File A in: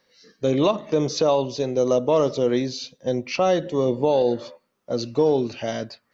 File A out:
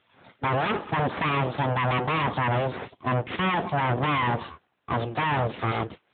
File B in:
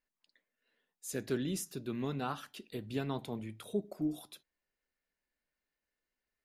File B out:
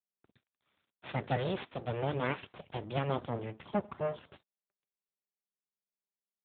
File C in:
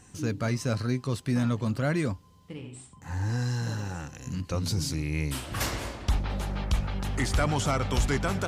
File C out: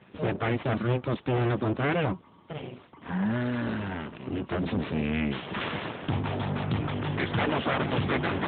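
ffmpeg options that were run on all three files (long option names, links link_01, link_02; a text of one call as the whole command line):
ffmpeg -i in.wav -af "aeval=exprs='abs(val(0))':channel_layout=same,aeval=exprs='0.355*(cos(1*acos(clip(val(0)/0.355,-1,1)))-cos(1*PI/2))+0.1*(cos(5*acos(clip(val(0)/0.355,-1,1)))-cos(5*PI/2))':channel_layout=same" -ar 8000 -c:a libopencore_amrnb -b:a 12200 out.amr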